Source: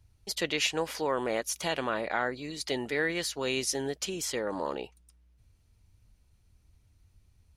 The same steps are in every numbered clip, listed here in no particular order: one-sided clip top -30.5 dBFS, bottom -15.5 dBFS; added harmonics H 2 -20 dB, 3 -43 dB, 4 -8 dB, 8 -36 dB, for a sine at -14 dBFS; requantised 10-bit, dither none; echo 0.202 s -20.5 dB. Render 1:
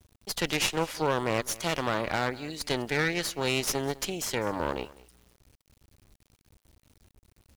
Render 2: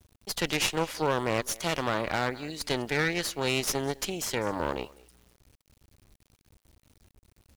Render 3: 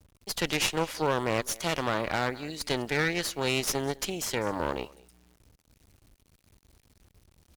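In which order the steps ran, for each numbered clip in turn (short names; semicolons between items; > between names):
added harmonics > one-sided clip > echo > requantised; echo > added harmonics > one-sided clip > requantised; requantised > echo > added harmonics > one-sided clip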